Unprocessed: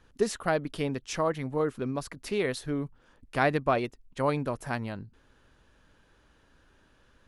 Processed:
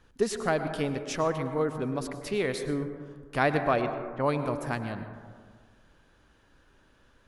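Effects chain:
0:03.81–0:04.41: low-pass that shuts in the quiet parts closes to 1,200 Hz, open at −21.5 dBFS
dense smooth reverb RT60 1.7 s, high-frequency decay 0.25×, pre-delay 90 ms, DRR 8 dB

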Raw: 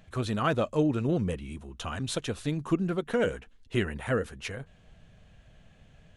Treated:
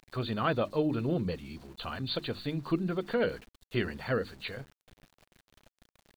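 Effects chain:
hearing-aid frequency compression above 3,500 Hz 4 to 1
parametric band 69 Hz −6.5 dB 0.69 octaves
mains-hum notches 50/100/150/200/250/300/350 Hz
centre clipping without the shift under −50 dBFS
level −2 dB

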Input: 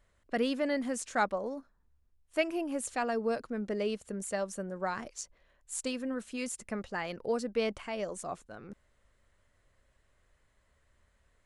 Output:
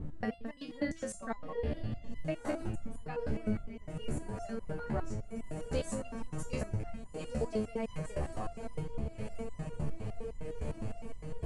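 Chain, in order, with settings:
slices reordered back to front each 114 ms, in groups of 2
wind on the microphone 160 Hz −36 dBFS
spectral tilt −1.5 dB per octave
feedback delay with all-pass diffusion 1,364 ms, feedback 59%, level −8 dB
downward compressor 12 to 1, threshold −33 dBFS, peak gain reduction 20 dB
step-sequenced resonator 9.8 Hz 74–1,000 Hz
level +12.5 dB

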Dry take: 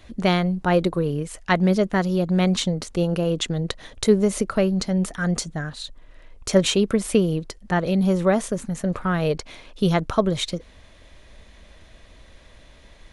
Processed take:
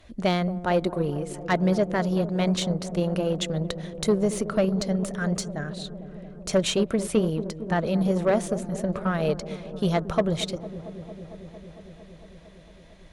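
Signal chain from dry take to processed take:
parametric band 630 Hz +5 dB 0.32 octaves
soft clipping −13 dBFS, distortion −14 dB
on a send: delay with a low-pass on its return 227 ms, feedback 81%, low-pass 650 Hz, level −10.5 dB
on the sum: harmonic generator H 3 −18 dB, 7 −45 dB, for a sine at −10.5 dBFS

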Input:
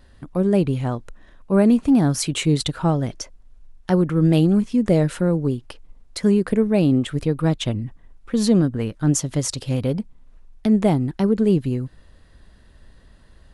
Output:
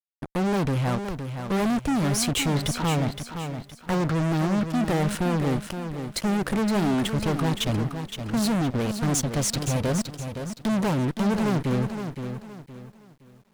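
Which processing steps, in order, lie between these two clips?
0:02.48–0:04.70: low-pass filter 2,400 Hz 12 dB per octave
fuzz pedal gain 29 dB, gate −36 dBFS
feedback echo at a low word length 517 ms, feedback 35%, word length 8 bits, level −8 dB
level −8.5 dB

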